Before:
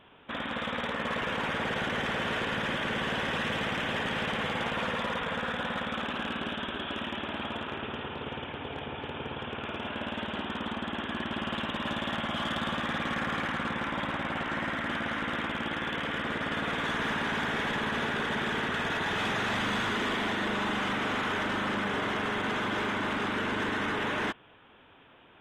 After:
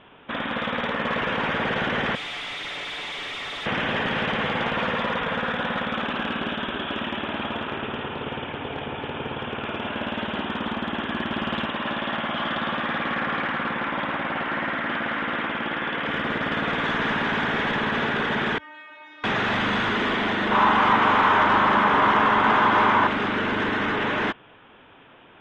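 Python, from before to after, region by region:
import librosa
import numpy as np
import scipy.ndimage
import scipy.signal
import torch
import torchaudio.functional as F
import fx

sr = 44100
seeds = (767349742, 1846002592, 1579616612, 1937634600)

y = fx.chain(x, sr, fx.freq_invert(carrier_hz=3800),
    fx.comb(ms=6.9, depth=0.55),
    fx.clip_hard(threshold_db=-37.0), at=(2.15, 3.66))
y = fx.chain(y, sr, fx.lowpass(hz=3800.0, slope=12),
    fx.low_shelf(hz=160.0, db=-9.0), at=(11.66, 16.06))
y = fx.chain(y, sr, fx.highpass(hz=110.0, slope=12),
    fx.bass_treble(bass_db=-14, treble_db=-8),
    fx.stiff_resonator(f0_hz=300.0, decay_s=0.72, stiffness=0.002), at=(18.58, 19.24))
y = fx.chain(y, sr, fx.peak_eq(hz=1000.0, db=11.5, octaves=0.84),
    fx.doubler(ms=18.0, db=-11.0),
    fx.echo_crushed(ms=312, feedback_pct=35, bits=8, wet_db=-11.0), at=(20.51, 23.07))
y = scipy.signal.sosfilt(scipy.signal.butter(2, 3900.0, 'lowpass', fs=sr, output='sos'), y)
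y = fx.peak_eq(y, sr, hz=71.0, db=-6.0, octaves=0.57)
y = y * 10.0 ** (6.5 / 20.0)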